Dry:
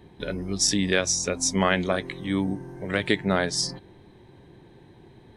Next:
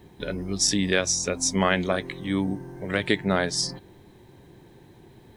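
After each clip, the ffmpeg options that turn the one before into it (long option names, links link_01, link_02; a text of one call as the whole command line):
ffmpeg -i in.wav -af "acrusher=bits=10:mix=0:aa=0.000001" out.wav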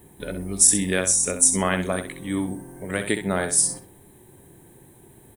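ffmpeg -i in.wav -filter_complex "[0:a]highshelf=frequency=6900:width_type=q:width=3:gain=12.5,asplit=2[link_01][link_02];[link_02]aecho=0:1:65|130|195:0.355|0.0674|0.0128[link_03];[link_01][link_03]amix=inputs=2:normalize=0,volume=-1dB" out.wav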